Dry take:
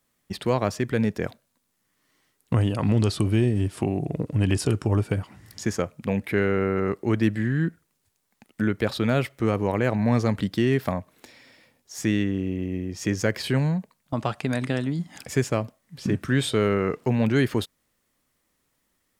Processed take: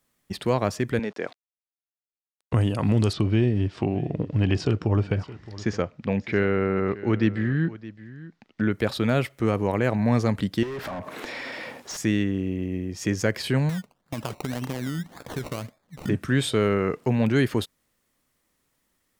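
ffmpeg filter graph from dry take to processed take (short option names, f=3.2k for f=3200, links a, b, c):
-filter_complex "[0:a]asettb=1/sr,asplit=3[a][b][c];[a]atrim=end=0.994[d];[b]atrim=start=0.99:end=2.53,asetpts=PTS-STARTPTS,afade=t=in:d=0.004:c=qsin,afade=t=out:st=1.536:d=0.004:c=qsin,aeval=exprs='val(0)*gte(abs(val(0)),0.00422)':c=same,highpass=340,lowpass=5.2k[e];[c]atrim=start=2.526[f];[d][e]acrossfade=d=0.004:c1=hsin:c2=qsin[g];[g][f]acrossfade=d=0.004:c1=qsin:c2=hsin,asettb=1/sr,asplit=3[h][i][j];[h]atrim=end=3.134[k];[i]atrim=start=3.13:end=8.71,asetpts=PTS-STARTPTS,afade=t=in:d=0.004:c=qsin,afade=t=out:st=5.576:d=0.004:c=qsin,lowpass=f=5.3k:w=0.5412,lowpass=f=5.3k:w=1.3066,aecho=1:1:617:0.133,atrim=end_sample=246078[l];[j]atrim=start=8.706[m];[k][l]acrossfade=d=0.004:c1=hsin:c2=qsin[n];[n][m]acrossfade=d=0.004:c1=qsin:c2=hsin,asettb=1/sr,asplit=3[o][p][q];[o]atrim=end=10.634[r];[p]atrim=start=10.63:end=11.97,asetpts=PTS-STARTPTS,afade=t=in:d=0.004:c=qsin,afade=t=out:st=1.336:d=0.004:c=qsin,asplit=2[s][t];[t]highpass=f=720:p=1,volume=38dB,asoftclip=type=tanh:threshold=-8.5dB[u];[s][u]amix=inputs=2:normalize=0,lowpass=f=1.1k:p=1,volume=-6dB,acompressor=threshold=-31dB:ratio=8:attack=3.2:release=140:knee=1:detection=peak[v];[q]atrim=start=11.966[w];[r][v]acrossfade=d=0.004:c1=hsin:c2=qsin[x];[x][w]acrossfade=d=0.004:c1=qsin:c2=hsin,asettb=1/sr,asplit=3[y][z][aa];[y]atrim=end=13.694[ab];[z]atrim=start=13.69:end=16.09,asetpts=PTS-STARTPTS,afade=t=in:d=0.004:c=qsin,afade=t=out:st=2.396:d=0.004:c=qsin,acompressor=threshold=-25dB:ratio=6:attack=3.2:release=140:knee=1:detection=peak,acrusher=samples=21:mix=1:aa=0.000001:lfo=1:lforange=12.6:lforate=1.8[ac];[aa]atrim=start=16.086[ad];[ab][ac]acrossfade=d=0.004:c1=hsin:c2=qsin[ae];[ae][ad]acrossfade=d=0.004:c1=qsin:c2=hsin"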